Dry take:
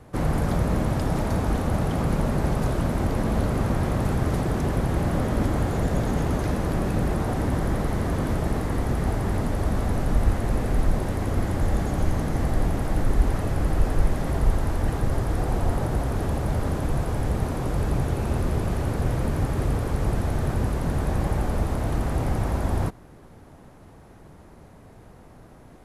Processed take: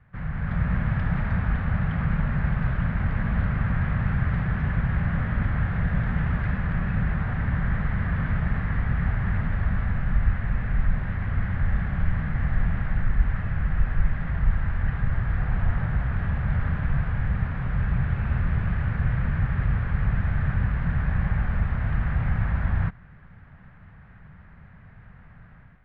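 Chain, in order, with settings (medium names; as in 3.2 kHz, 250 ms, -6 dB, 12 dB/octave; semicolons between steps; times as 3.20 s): distance through air 190 m; level rider gain up to 9 dB; FFT filter 180 Hz 0 dB, 320 Hz -19 dB, 950 Hz -7 dB, 1.7 kHz +7 dB, 3.1 kHz -4 dB, 7.5 kHz -26 dB; trim -7 dB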